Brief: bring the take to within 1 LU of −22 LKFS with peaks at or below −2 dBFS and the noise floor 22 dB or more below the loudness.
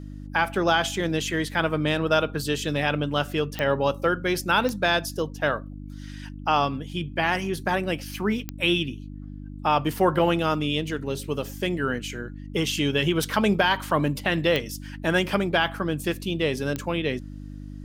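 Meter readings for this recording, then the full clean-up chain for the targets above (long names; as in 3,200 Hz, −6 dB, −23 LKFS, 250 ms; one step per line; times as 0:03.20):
number of clicks 6; mains hum 50 Hz; hum harmonics up to 300 Hz; level of the hum −35 dBFS; integrated loudness −25.0 LKFS; sample peak −7.0 dBFS; target loudness −22.0 LKFS
→ click removal
hum removal 50 Hz, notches 6
level +3 dB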